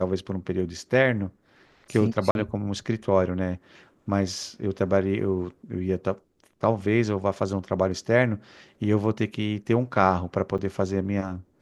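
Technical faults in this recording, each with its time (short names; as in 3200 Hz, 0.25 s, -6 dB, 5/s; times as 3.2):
2.31–2.35 gap 41 ms
10.58–10.59 gap 5.4 ms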